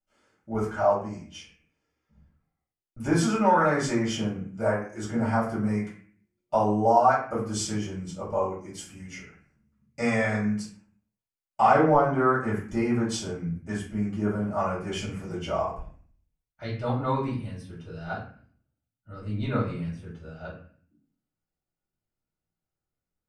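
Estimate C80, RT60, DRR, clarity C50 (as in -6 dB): 9.0 dB, 0.50 s, -8.0 dB, 5.0 dB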